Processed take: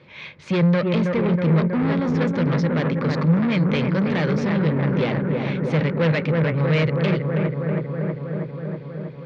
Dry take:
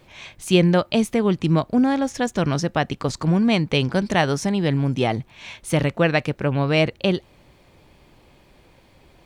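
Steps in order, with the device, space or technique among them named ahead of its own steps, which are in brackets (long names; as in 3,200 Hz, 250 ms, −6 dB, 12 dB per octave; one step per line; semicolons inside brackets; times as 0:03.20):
analogue delay pedal into a guitar amplifier (bucket-brigade delay 321 ms, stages 4,096, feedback 76%, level −6.5 dB; tube saturation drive 23 dB, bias 0.55; loudspeaker in its box 110–4,200 Hz, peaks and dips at 160 Hz +8 dB, 310 Hz −3 dB, 500 Hz +5 dB, 720 Hz −10 dB, 2,100 Hz +4 dB, 3,000 Hz −3 dB)
level +4.5 dB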